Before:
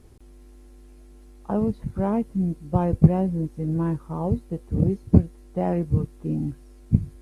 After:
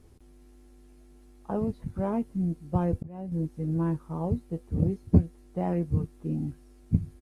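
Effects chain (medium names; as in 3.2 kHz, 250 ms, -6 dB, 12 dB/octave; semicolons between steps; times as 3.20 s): doubling 12 ms -11 dB; 2.87–3.32 s: slow attack 568 ms; trim -5 dB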